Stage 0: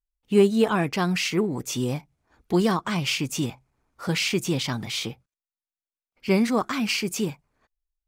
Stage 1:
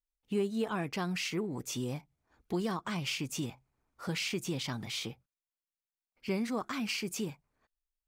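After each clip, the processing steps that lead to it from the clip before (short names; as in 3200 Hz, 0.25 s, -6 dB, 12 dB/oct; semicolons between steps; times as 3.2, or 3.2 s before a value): compressor 2:1, threshold -25 dBFS, peak gain reduction 7 dB; gain -7.5 dB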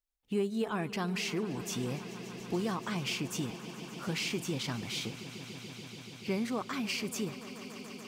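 swelling echo 0.144 s, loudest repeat 5, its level -17.5 dB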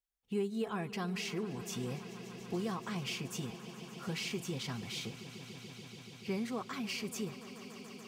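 notch comb 300 Hz; gain -3 dB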